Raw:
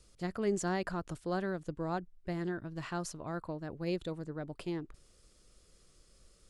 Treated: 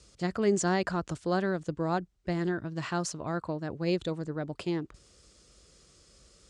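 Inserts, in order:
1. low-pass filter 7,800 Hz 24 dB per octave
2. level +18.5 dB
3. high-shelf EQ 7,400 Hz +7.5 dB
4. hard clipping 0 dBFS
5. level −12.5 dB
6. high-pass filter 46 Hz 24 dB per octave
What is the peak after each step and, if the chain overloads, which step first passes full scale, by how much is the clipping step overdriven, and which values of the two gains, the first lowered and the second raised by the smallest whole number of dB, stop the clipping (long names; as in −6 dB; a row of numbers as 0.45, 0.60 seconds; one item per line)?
−20.5, −2.0, −2.0, −2.0, −14.5, −15.5 dBFS
no step passes full scale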